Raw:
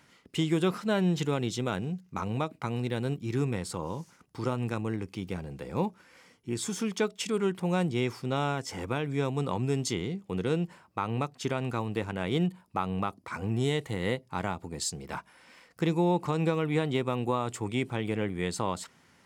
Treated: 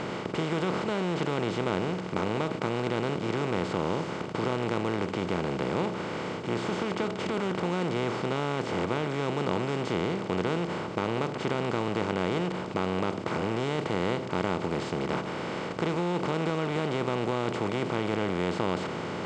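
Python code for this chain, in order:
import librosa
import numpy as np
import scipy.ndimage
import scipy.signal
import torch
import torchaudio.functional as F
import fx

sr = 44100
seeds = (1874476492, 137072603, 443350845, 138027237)

y = fx.bin_compress(x, sr, power=0.2)
y = scipy.signal.sosfilt(scipy.signal.butter(2, 3500.0, 'lowpass', fs=sr, output='sos'), y)
y = F.gain(torch.from_numpy(y), -8.5).numpy()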